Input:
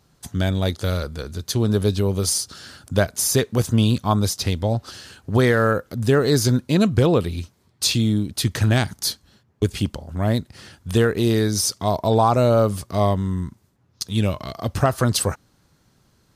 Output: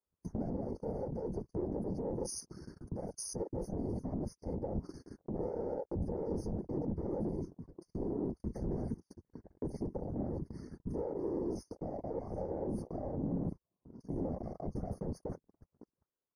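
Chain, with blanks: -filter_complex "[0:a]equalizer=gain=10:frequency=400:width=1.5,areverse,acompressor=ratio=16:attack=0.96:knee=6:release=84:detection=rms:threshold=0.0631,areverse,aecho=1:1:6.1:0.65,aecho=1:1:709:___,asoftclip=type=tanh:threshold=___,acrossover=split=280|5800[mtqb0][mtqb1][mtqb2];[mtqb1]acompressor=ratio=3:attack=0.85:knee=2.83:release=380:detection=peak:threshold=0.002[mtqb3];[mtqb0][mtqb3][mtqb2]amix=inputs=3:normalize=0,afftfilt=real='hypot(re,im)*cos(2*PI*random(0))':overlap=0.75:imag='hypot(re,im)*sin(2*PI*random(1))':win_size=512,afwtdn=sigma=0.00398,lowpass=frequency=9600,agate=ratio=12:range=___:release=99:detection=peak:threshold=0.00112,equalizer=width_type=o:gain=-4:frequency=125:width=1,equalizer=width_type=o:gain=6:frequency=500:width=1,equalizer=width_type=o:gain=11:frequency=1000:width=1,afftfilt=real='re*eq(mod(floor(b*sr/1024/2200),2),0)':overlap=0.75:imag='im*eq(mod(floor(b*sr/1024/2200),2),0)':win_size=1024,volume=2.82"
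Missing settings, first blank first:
0.0708, 0.02, 0.0251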